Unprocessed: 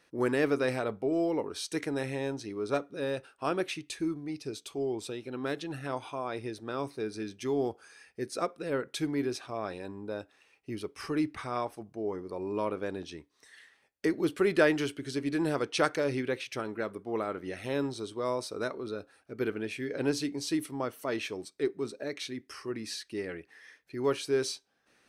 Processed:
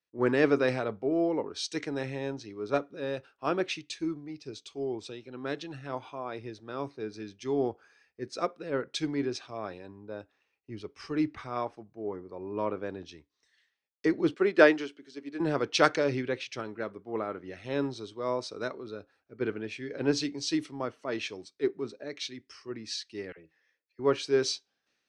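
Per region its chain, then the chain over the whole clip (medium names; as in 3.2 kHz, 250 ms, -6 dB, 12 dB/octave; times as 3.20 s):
14.34–15.40 s: high-pass 190 Hz 24 dB/octave + upward expansion, over -35 dBFS
23.32–23.99 s: feedback comb 160 Hz, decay 0.18 s + small resonant body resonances 540/2600 Hz, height 10 dB + phase dispersion lows, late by 52 ms, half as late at 770 Hz
whole clip: low-pass 6.5 kHz 24 dB/octave; three bands expanded up and down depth 70%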